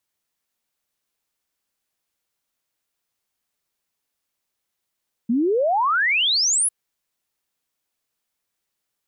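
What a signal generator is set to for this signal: log sweep 220 Hz -> 11 kHz 1.40 s -16.5 dBFS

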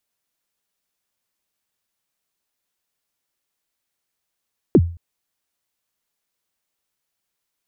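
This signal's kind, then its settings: kick drum length 0.22 s, from 440 Hz, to 85 Hz, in 52 ms, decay 0.40 s, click off, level -5 dB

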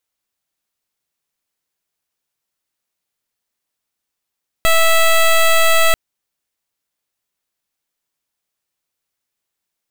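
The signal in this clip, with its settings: pulse 656 Hz, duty 12% -11 dBFS 1.29 s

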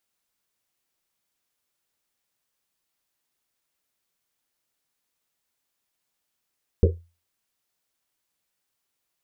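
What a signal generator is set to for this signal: Risset drum, pitch 85 Hz, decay 0.31 s, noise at 430 Hz, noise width 160 Hz, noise 40%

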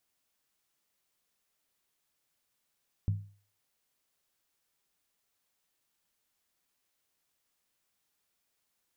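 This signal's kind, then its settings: skin hit, lowest mode 101 Hz, decay 0.42 s, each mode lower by 10.5 dB, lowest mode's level -23 dB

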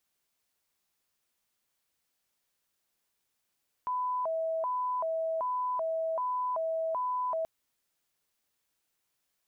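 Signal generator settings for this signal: siren hi-lo 649–1000 Hz 1.3 per s sine -28.5 dBFS 3.58 s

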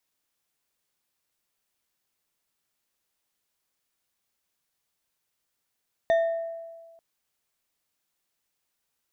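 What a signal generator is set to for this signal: glass hit bar, lowest mode 664 Hz, decay 1.53 s, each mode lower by 12 dB, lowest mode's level -17 dB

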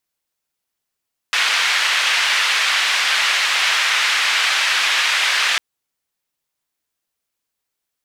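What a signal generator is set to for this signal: noise band 1.7–2.6 kHz, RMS -17.5 dBFS 4.25 s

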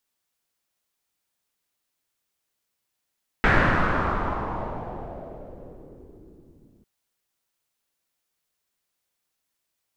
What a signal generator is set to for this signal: swept filtered noise pink, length 3.40 s lowpass, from 1.8 kHz, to 270 Hz, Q 2.6, exponential, gain ramp -37.5 dB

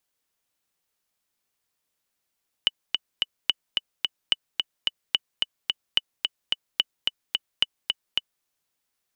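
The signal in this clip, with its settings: metronome 218 bpm, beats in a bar 3, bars 7, 2.97 kHz, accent 3.5 dB -6 dBFS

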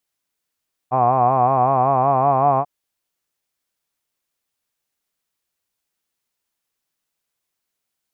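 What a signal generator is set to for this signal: formant-synthesis vowel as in hod, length 1.74 s, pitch 124 Hz, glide +2 st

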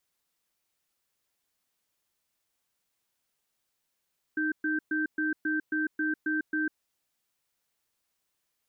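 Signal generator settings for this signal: cadence 309 Hz, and 1.56 kHz, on 0.15 s, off 0.12 s, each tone -28.5 dBFS 2.37 s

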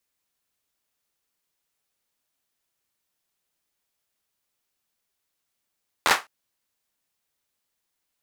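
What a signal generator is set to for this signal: hand clap length 0.21 s, bursts 5, apart 12 ms, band 1.2 kHz, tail 0.21 s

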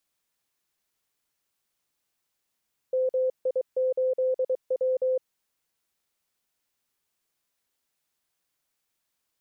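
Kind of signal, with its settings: Morse "MI8W" 23 wpm 515 Hz -21.5 dBFS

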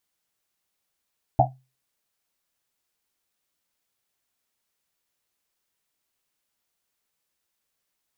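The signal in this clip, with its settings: Risset drum, pitch 130 Hz, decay 0.31 s, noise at 730 Hz, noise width 170 Hz, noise 65%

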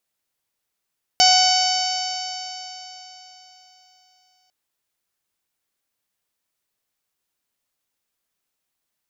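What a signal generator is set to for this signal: stretched partials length 3.30 s, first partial 739 Hz, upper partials -13.5/-10.5/-5/-14.5/-1/-1.5/-7/-12 dB, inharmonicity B 0.0019, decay 3.80 s, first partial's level -15 dB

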